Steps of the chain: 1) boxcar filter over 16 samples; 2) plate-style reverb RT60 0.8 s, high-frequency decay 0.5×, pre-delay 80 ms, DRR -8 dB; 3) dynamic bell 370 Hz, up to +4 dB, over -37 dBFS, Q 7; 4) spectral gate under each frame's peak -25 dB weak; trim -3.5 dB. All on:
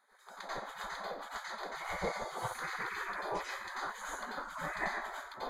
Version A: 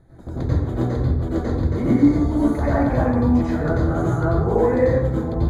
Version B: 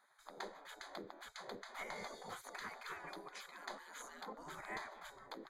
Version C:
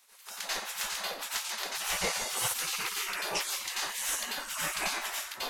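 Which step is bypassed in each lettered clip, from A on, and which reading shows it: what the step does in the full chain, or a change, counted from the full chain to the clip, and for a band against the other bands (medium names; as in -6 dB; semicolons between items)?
4, 2 kHz band -24.0 dB; 2, crest factor change +3.0 dB; 1, 8 kHz band +19.0 dB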